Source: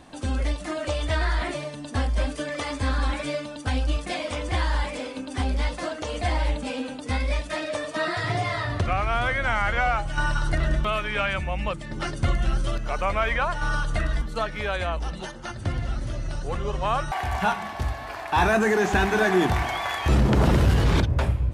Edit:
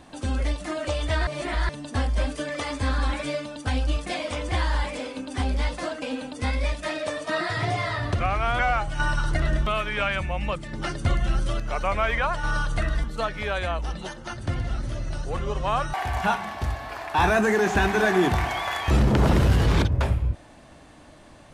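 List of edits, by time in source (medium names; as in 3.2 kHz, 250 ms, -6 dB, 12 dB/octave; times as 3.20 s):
1.27–1.69 s: reverse
6.02–6.69 s: delete
9.26–9.77 s: delete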